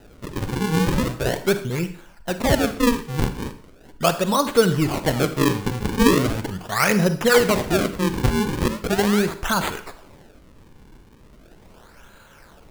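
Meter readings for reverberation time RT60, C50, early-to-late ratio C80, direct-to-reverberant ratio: 0.50 s, 12.0 dB, 15.5 dB, 10.5 dB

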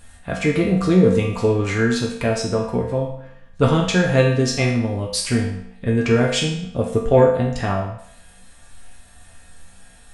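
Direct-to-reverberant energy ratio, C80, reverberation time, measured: −3.5 dB, 7.5 dB, 0.70 s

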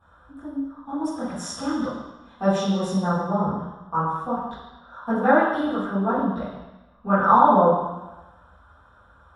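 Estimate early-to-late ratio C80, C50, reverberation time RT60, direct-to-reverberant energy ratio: 3.0 dB, 0.5 dB, 1.1 s, −14.0 dB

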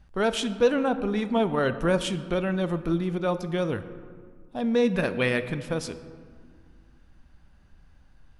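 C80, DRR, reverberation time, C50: 13.5 dB, 11.0 dB, 2.0 s, 13.0 dB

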